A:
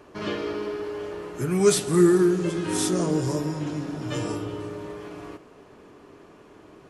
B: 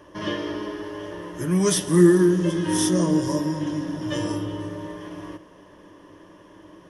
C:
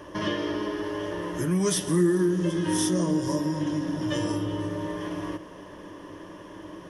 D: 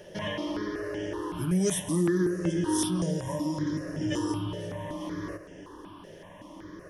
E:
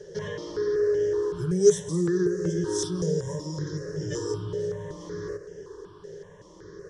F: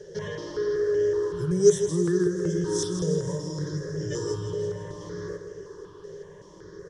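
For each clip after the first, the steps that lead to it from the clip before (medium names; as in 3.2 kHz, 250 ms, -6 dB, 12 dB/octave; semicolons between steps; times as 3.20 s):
rippled EQ curve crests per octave 1.2, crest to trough 11 dB
compression 2:1, threshold -35 dBFS, peak gain reduction 14 dB; trim +5.5 dB
stepped phaser 5.3 Hz 290–4000 Hz
FFT filter 100 Hz 0 dB, 160 Hz +4 dB, 270 Hz -20 dB, 420 Hz +15 dB, 640 Hz -12 dB, 1.6 kHz 0 dB, 2.6 kHz -16 dB, 4 kHz +1 dB, 7.5 kHz +6 dB, 11 kHz -21 dB
feedback delay 162 ms, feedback 59%, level -10 dB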